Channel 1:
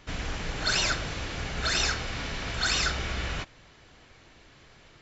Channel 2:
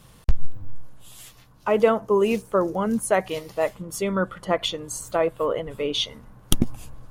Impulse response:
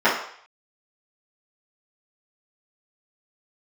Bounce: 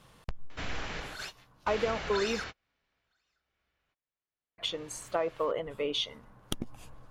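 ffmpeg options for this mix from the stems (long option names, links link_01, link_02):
-filter_complex "[0:a]alimiter=level_in=0.5dB:limit=-24dB:level=0:latency=1:release=461,volume=-0.5dB,adelay=500,volume=2dB[link_01];[1:a]acompressor=threshold=-21dB:ratio=20,volume=-2dB,asplit=3[link_02][link_03][link_04];[link_02]atrim=end=2.44,asetpts=PTS-STARTPTS,afade=type=out:start_time=2.436:duration=0.004:curve=hsin[link_05];[link_03]atrim=start=2.44:end=4.58,asetpts=PTS-STARTPTS,volume=0[link_06];[link_04]atrim=start=4.58,asetpts=PTS-STARTPTS,afade=type=in:duration=0.004:curve=hsin[link_07];[link_05][link_06][link_07]concat=n=3:v=0:a=1,asplit=2[link_08][link_09];[link_09]apad=whole_len=243162[link_10];[link_01][link_10]sidechaingate=range=-43dB:threshold=-44dB:ratio=16:detection=peak[link_11];[link_11][link_08]amix=inputs=2:normalize=0,lowpass=frequency=3300:poles=1,lowshelf=frequency=310:gain=-9"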